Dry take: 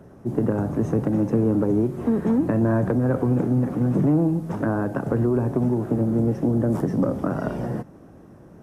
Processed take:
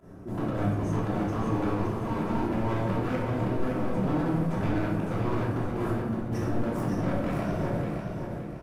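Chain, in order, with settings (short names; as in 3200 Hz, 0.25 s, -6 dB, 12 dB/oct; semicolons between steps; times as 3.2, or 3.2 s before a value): reverb removal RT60 1 s; 5.63–6.38 negative-ratio compressor -30 dBFS, ratio -0.5; limiter -20.5 dBFS, peak gain reduction 10.5 dB; pump 121 bpm, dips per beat 2, -17 dB, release 66 ms; wavefolder -26.5 dBFS; feedback echo 0.569 s, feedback 35%, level -5.5 dB; shoebox room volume 560 m³, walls mixed, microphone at 3 m; gain -5 dB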